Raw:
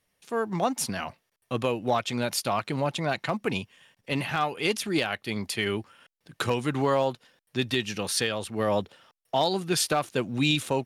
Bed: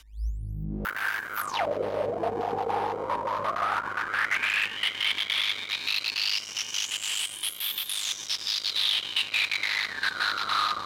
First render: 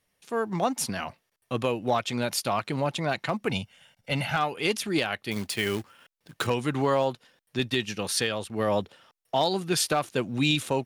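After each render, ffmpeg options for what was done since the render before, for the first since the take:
-filter_complex "[0:a]asettb=1/sr,asplit=3[a][b][c];[a]atrim=end=3.504[d];[b]atrim=start=3.5:end=4.37,asetpts=PTS-STARTPTS,afade=t=in:d=0.004:c=qsin,afade=t=out:st=0.866:d=0.004:c=qsin,aecho=1:1:1.4:0.65,atrim=end_sample=38367[e];[c]atrim=start=4.366[f];[d][e]acrossfade=d=0.004:c1=hsin:c2=qsin[g];[g][f]acrossfade=d=0.004:c1=qsin:c2=hsin,asettb=1/sr,asplit=3[h][i][j];[h]atrim=end=5.314[k];[i]atrim=start=5.31:end=6.47,asetpts=PTS-STARTPTS,afade=t=in:d=0.004:c=qsin,afade=t=out:st=1.156:d=0.004:c=qsin,acrusher=bits=3:mode=log:mix=0:aa=0.000001[l];[j]atrim=start=6.466[m];[k][l]acrossfade=d=0.004:c1=hsin:c2=qsin[n];[n][m]acrossfade=d=0.004:c1=qsin:c2=hsin,asettb=1/sr,asplit=3[o][p][q];[o]atrim=end=7.594[r];[p]atrim=start=7.59:end=8.5,asetpts=PTS-STARTPTS,afade=t=in:d=0.004:c=qsin,afade=t=out:st=0.906:d=0.004:c=qsin,agate=range=-33dB:threshold=-34dB:ratio=3:release=100:detection=peak[s];[q]atrim=start=8.496[t];[r][s]acrossfade=d=0.004:c1=hsin:c2=qsin[u];[u][t]acrossfade=d=0.004:c1=qsin:c2=hsin"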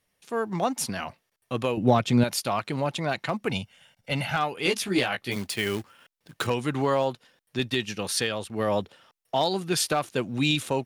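-filter_complex "[0:a]asettb=1/sr,asplit=3[a][b][c];[a]atrim=end=1.774[d];[b]atrim=start=1.77:end=2.24,asetpts=PTS-STARTPTS,afade=t=in:d=0.004:c=qsin,afade=t=out:st=0.466:d=0.004:c=qsin,equalizer=f=150:t=o:w=2.9:g=12.5[e];[c]atrim=start=2.236[f];[d][e]acrossfade=d=0.004:c1=hsin:c2=qsin[g];[g][f]acrossfade=d=0.004:c1=qsin:c2=hsin,asettb=1/sr,asplit=3[h][i][j];[h]atrim=end=4.644[k];[i]atrim=start=4.64:end=5.36,asetpts=PTS-STARTPTS,afade=t=in:d=0.004:c=qsin,afade=t=out:st=0.716:d=0.004:c=qsin,asplit=2[l][m];[m]adelay=16,volume=-2.5dB[n];[l][n]amix=inputs=2:normalize=0,atrim=end_sample=31752[o];[j]atrim=start=5.356[p];[k][o]acrossfade=d=0.004:c1=hsin:c2=qsin[q];[q][p]acrossfade=d=0.004:c1=qsin:c2=hsin"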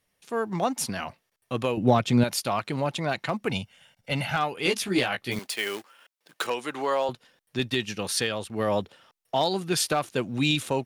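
-filter_complex "[0:a]asettb=1/sr,asplit=3[a][b][c];[a]atrim=end=5.394[d];[b]atrim=start=5.39:end=7.09,asetpts=PTS-STARTPTS,afade=t=in:d=0.004:c=qsin,afade=t=out:st=1.696:d=0.004:c=qsin,highpass=430[e];[c]atrim=start=7.086[f];[d][e]acrossfade=d=0.004:c1=hsin:c2=qsin[g];[g][f]acrossfade=d=0.004:c1=qsin:c2=hsin"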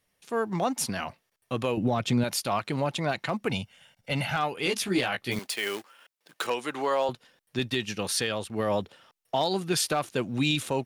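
-af "alimiter=limit=-16dB:level=0:latency=1:release=33"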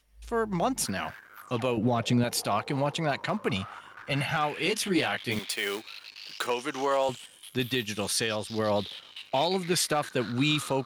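-filter_complex "[1:a]volume=-16.5dB[a];[0:a][a]amix=inputs=2:normalize=0"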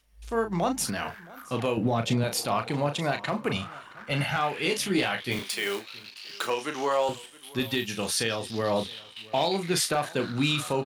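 -filter_complex "[0:a]asplit=2[a][b];[b]adelay=35,volume=-7.5dB[c];[a][c]amix=inputs=2:normalize=0,aecho=1:1:670:0.0794"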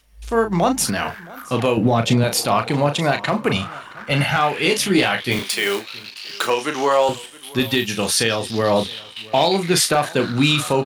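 -af "volume=9dB"

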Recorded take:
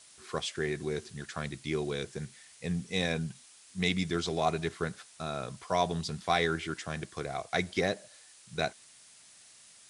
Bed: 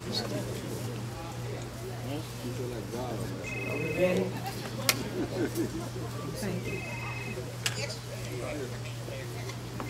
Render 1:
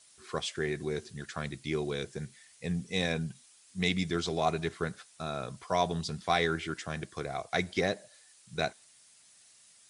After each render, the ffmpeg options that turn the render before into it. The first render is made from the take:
-af "afftdn=nr=6:nf=-57"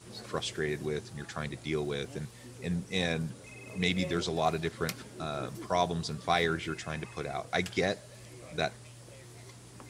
-filter_complex "[1:a]volume=-13dB[a];[0:a][a]amix=inputs=2:normalize=0"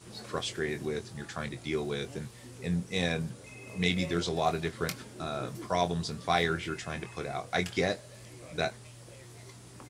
-filter_complex "[0:a]asplit=2[a][b];[b]adelay=23,volume=-9dB[c];[a][c]amix=inputs=2:normalize=0"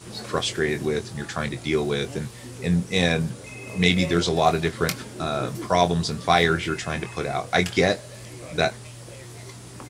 -af "volume=9dB,alimiter=limit=-3dB:level=0:latency=1"

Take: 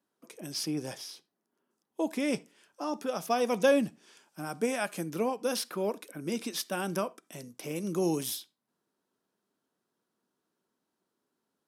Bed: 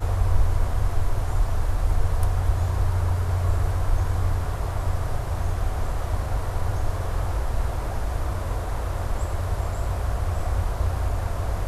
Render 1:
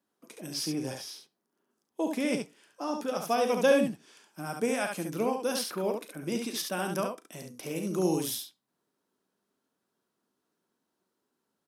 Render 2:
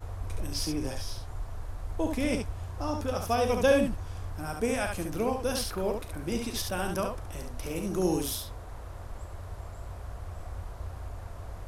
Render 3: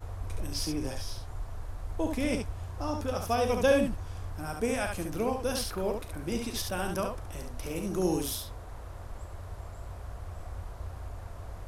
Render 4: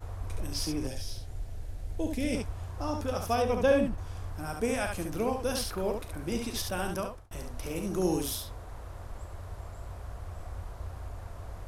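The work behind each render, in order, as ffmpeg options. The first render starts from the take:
-af "aecho=1:1:38|70:0.237|0.562"
-filter_complex "[1:a]volume=-14.5dB[a];[0:a][a]amix=inputs=2:normalize=0"
-af "volume=-1dB"
-filter_complex "[0:a]asettb=1/sr,asplit=3[a][b][c];[a]atrim=end=0.874[d];[b]atrim=start=0.87:end=2.35,asetpts=PTS-STARTPTS,afade=t=in:d=0.004:c=qsin,afade=t=out:st=1.476:d=0.004:c=qsin,equalizer=f=1.1k:t=o:w=0.94:g=-14[e];[c]atrim=start=2.346[f];[d][e]acrossfade=d=0.004:c1=hsin:c2=qsin[g];[g][f]acrossfade=d=0.004:c1=qsin:c2=hsin,asettb=1/sr,asplit=3[h][i][j];[h]atrim=end=3.424[k];[i]atrim=start=3.42:end=3.98,asetpts=PTS-STARTPTS,afade=t=in:d=0.004:c=qsin,afade=t=out:st=0.556:d=0.004:c=qsin,highshelf=f=3.5k:g=-9.5[l];[j]atrim=start=3.976[m];[k][l]acrossfade=d=0.004:c1=hsin:c2=qsin[n];[n][m]acrossfade=d=0.004:c1=qsin:c2=hsin,asplit=2[o][p];[o]atrim=end=7.31,asetpts=PTS-STARTPTS,afade=t=out:st=6.77:d=0.54:c=qsin[q];[p]atrim=start=7.31,asetpts=PTS-STARTPTS,afade=t=in:d=0.004:c=hsin[r];[q][r]concat=n=2:v=0:a=1"

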